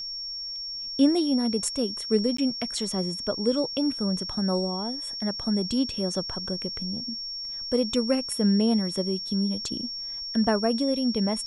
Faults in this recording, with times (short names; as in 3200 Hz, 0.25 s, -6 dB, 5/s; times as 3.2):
tone 5500 Hz -32 dBFS
2.37–2.38 gap 14 ms